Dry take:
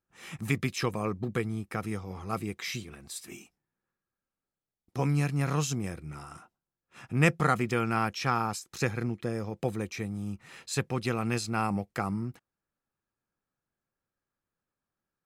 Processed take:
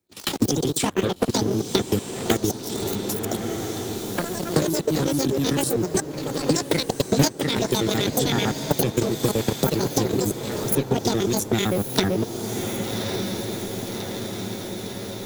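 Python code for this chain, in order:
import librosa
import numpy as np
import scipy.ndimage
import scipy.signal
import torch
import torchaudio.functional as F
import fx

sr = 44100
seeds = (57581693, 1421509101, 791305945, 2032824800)

p1 = fx.pitch_trill(x, sr, semitones=10.5, every_ms=64)
p2 = scipy.signal.sosfilt(scipy.signal.butter(4, 68.0, 'highpass', fs=sr, output='sos'), p1)
p3 = fx.band_shelf(p2, sr, hz=970.0, db=-9.0, octaves=2.6)
p4 = fx.echo_pitch(p3, sr, ms=113, semitones=2, count=2, db_per_echo=-6.0)
p5 = fx.level_steps(p4, sr, step_db=12)
p6 = fx.leveller(p5, sr, passes=3)
p7 = fx.formant_shift(p6, sr, semitones=6)
p8 = fx.transient(p7, sr, attack_db=10, sustain_db=-11)
p9 = p8 + fx.echo_diffused(p8, sr, ms=1161, feedback_pct=45, wet_db=-12.5, dry=0)
p10 = fx.band_squash(p9, sr, depth_pct=70)
y = F.gain(torch.from_numpy(p10), 1.0).numpy()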